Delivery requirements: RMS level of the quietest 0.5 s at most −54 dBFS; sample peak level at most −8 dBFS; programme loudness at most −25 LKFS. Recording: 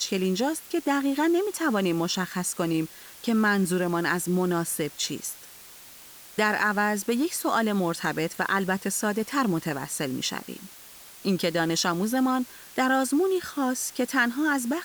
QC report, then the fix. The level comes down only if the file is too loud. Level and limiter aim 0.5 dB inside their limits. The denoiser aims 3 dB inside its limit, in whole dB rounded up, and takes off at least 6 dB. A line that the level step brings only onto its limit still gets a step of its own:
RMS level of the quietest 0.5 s −47 dBFS: out of spec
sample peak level −10.5 dBFS: in spec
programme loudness −26.0 LKFS: in spec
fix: broadband denoise 10 dB, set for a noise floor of −47 dBFS

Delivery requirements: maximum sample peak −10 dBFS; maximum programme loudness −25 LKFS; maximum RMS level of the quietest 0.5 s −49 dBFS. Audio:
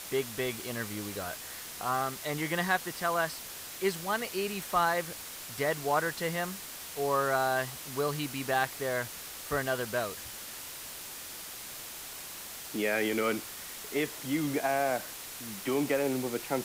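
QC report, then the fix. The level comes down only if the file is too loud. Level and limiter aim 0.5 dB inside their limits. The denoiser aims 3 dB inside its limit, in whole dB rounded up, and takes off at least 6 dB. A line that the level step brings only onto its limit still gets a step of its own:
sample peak −14.5 dBFS: in spec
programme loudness −32.5 LKFS: in spec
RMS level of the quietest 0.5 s −43 dBFS: out of spec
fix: broadband denoise 9 dB, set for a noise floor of −43 dBFS

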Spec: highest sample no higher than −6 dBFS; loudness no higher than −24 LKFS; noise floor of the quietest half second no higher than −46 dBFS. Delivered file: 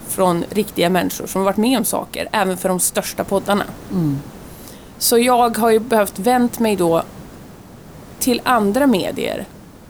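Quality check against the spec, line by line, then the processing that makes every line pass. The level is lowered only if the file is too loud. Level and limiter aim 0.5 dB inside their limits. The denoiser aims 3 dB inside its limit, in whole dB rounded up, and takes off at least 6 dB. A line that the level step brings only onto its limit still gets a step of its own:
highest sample −4.0 dBFS: out of spec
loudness −17.5 LKFS: out of spec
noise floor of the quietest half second −39 dBFS: out of spec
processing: broadband denoise 6 dB, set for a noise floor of −39 dBFS
level −7 dB

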